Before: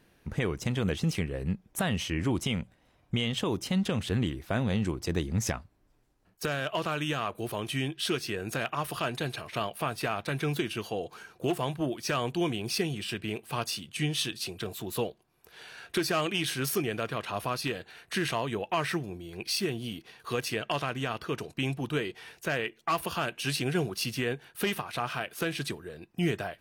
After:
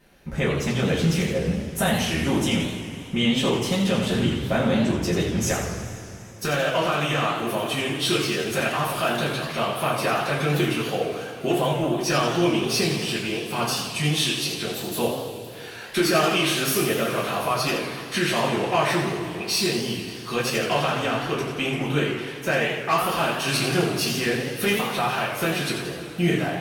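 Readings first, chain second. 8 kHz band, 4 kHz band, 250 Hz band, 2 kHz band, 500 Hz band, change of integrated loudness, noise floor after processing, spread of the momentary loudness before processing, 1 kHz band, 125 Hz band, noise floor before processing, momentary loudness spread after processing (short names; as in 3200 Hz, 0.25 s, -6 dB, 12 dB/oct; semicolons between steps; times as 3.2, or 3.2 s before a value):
+8.5 dB, +8.5 dB, +8.0 dB, +8.5 dB, +9.0 dB, +8.0 dB, -37 dBFS, 6 LU, +9.0 dB, +6.0 dB, -66 dBFS, 7 LU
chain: two-slope reverb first 0.26 s, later 3.3 s, from -18 dB, DRR -7 dB; warbling echo 83 ms, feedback 55%, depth 191 cents, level -7 dB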